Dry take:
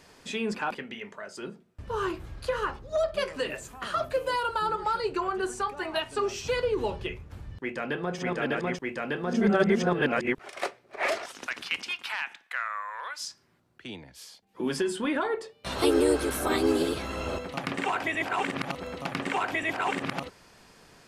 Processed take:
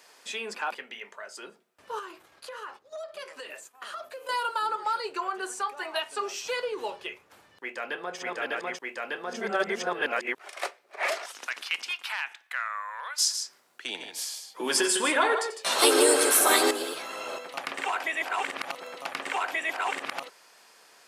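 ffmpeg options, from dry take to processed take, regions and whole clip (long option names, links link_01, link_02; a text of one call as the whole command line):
ffmpeg -i in.wav -filter_complex "[0:a]asettb=1/sr,asplit=3[link_01][link_02][link_03];[link_01]atrim=end=1.994[link_04];[link_02]atrim=start=1.99:end=4.29,asetpts=PTS-STARTPTS,afade=type=in:duration=0.004:curve=qsin,afade=type=out:start_time=2.296:duration=0.004:curve=qsin,agate=range=-33dB:threshold=-38dB:ratio=3:release=100:detection=peak,acompressor=threshold=-37dB:ratio=3:attack=3.2:release=140:knee=1:detection=peak[link_05];[link_03]atrim=start=4.286[link_06];[link_04][link_05]acrossfade=duration=0.004:curve1=hsin:curve2=qsin[link_07];[link_07][link_06]acrossfade=duration=0.004:curve1=qsin:curve2=hsin,asettb=1/sr,asplit=3[link_08][link_09][link_10];[link_08]atrim=end=13.184[link_11];[link_09]atrim=start=13.18:end=16.71,asetpts=PTS-STARTPTS,afade=type=in:duration=0.004:curve=qsin,afade=type=out:start_time=3.526:duration=0.004:curve=qsin,equalizer=frequency=7700:width_type=o:width=1.4:gain=5,aecho=1:1:90|154:0.224|0.376,atrim=end_sample=155673,acontrast=85[link_12];[link_10]atrim=start=16.706[link_13];[link_11][link_12]acrossfade=duration=0.004:curve1=hsin:curve2=qsin[link_14];[link_14][link_13]acrossfade=duration=0.004:curve1=qsin:curve2=hsin,highpass=570,highshelf=frequency=8400:gain=6.5" out.wav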